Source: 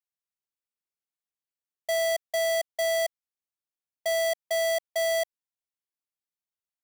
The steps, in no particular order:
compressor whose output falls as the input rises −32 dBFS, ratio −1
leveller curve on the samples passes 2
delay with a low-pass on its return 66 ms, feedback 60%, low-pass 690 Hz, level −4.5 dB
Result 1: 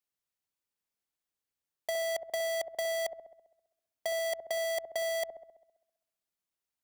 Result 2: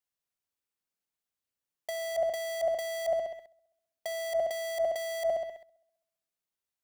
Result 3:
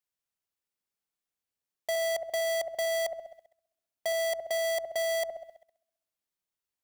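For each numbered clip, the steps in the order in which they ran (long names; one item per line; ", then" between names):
leveller curve on the samples, then compressor whose output falls as the input rises, then delay with a low-pass on its return
delay with a low-pass on its return, then leveller curve on the samples, then compressor whose output falls as the input rises
compressor whose output falls as the input rises, then delay with a low-pass on its return, then leveller curve on the samples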